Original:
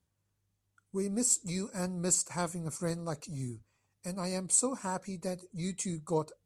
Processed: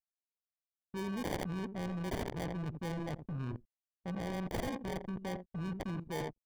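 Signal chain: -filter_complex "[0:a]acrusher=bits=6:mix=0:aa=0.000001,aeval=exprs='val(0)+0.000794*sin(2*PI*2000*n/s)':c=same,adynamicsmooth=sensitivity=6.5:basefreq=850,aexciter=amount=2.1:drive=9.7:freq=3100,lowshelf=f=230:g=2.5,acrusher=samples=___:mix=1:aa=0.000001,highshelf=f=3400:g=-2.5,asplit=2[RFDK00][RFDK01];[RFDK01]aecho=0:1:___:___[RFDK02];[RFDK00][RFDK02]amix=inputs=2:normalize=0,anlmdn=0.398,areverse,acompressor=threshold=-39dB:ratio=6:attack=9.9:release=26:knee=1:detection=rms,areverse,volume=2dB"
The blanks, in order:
33, 86, 0.282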